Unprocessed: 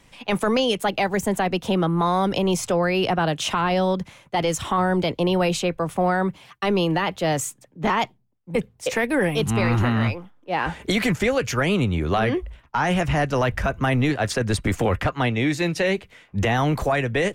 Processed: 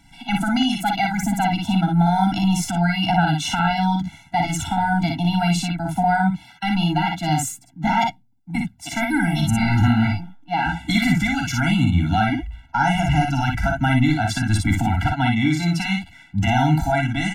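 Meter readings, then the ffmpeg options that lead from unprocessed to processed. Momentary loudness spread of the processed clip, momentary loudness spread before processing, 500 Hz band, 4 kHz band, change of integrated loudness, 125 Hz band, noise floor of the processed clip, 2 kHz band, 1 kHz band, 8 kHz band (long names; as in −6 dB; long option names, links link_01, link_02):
7 LU, 6 LU, −8.0 dB, +1.5 dB, +2.0 dB, +4.5 dB, −51 dBFS, +2.0 dB, +3.5 dB, +1.5 dB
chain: -af "aecho=1:1:46|58:0.355|0.631,afftfilt=real='re*eq(mod(floor(b*sr/1024/330),2),0)':imag='im*eq(mod(floor(b*sr/1024/330),2),0)':win_size=1024:overlap=0.75,volume=3dB"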